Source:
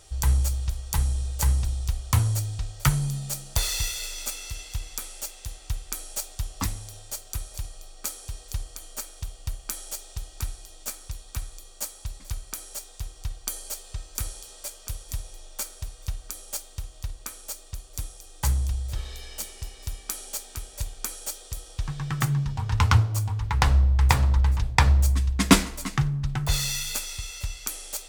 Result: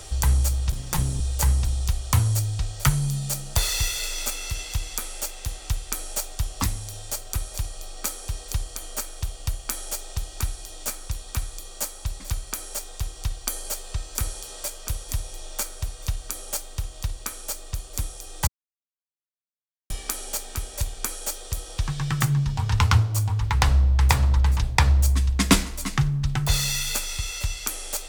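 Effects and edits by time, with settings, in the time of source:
0:00.72–0:01.20: lower of the sound and its delayed copy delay 5.6 ms
0:18.47–0:19.90: silence
whole clip: multiband upward and downward compressor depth 40%; level +3.5 dB

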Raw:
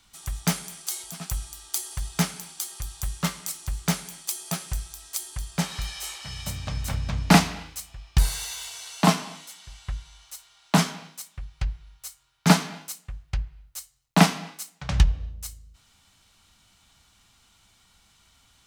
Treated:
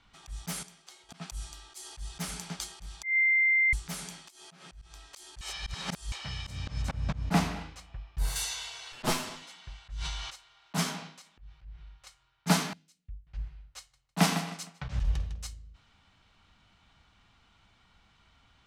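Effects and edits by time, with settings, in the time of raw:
0:00.63–0:01.09: clip gain −11 dB
0:01.83–0:02.41: delay throw 310 ms, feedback 40%, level −16.5 dB
0:03.03–0:03.73: beep over 2,090 Hz −21 dBFS
0:04.30–0:04.82: downward compressor 10 to 1, threshold −37 dBFS
0:05.41–0:06.12: reverse
0:06.82–0:08.36: high-shelf EQ 2,500 Hz −9.5 dB
0:08.92–0:09.42: lower of the sound and its delayed copy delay 8 ms
0:09.94–0:10.34: level that may fall only so fast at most 23 dB per second
0:11.08–0:12.07: downward compressor 3 to 1, threshold −39 dBFS
0:12.73–0:13.27: guitar amp tone stack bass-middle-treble 10-0-1
0:13.78–0:15.45: repeating echo 154 ms, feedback 33%, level −18 dB
whole clip: low-pass that shuts in the quiet parts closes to 2,600 Hz, open at −20.5 dBFS; high-shelf EQ 9,800 Hz +5.5 dB; volume swells 146 ms

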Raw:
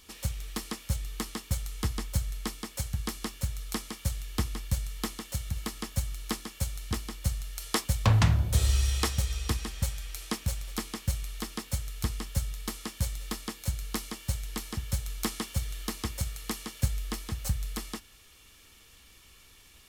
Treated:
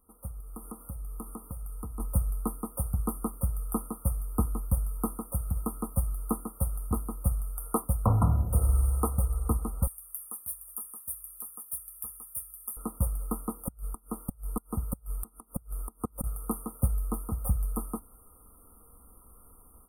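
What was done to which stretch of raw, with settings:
0:00.40–0:02.00: downward compressor 3 to 1, threshold −41 dBFS
0:09.87–0:12.77: first-order pre-emphasis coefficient 0.97
0:13.51–0:16.24: gate with flip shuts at −20 dBFS, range −28 dB
whole clip: brick-wall band-stop 1,400–8,600 Hz; comb filter 4.1 ms, depth 34%; automatic gain control gain up to 12.5 dB; level −9 dB

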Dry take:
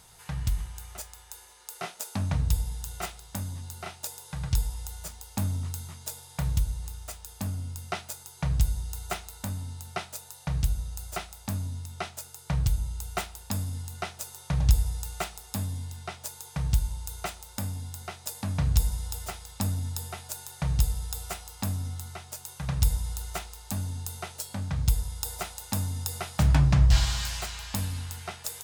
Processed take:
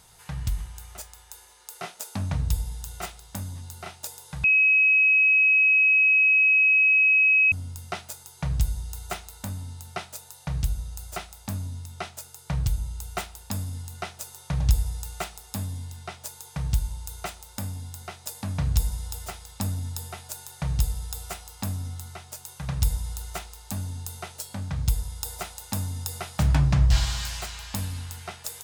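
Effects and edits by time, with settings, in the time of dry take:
0:04.44–0:07.52: beep over 2,550 Hz −15.5 dBFS

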